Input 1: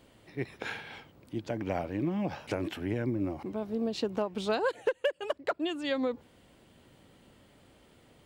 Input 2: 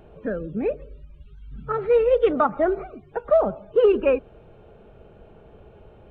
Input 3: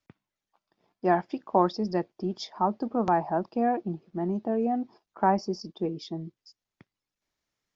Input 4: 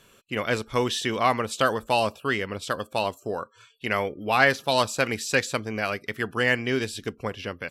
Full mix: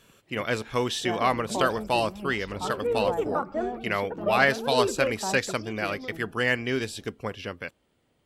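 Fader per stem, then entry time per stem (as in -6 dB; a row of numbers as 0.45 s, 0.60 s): -10.5 dB, -9.5 dB, -9.5 dB, -2.0 dB; 0.00 s, 0.95 s, 0.00 s, 0.00 s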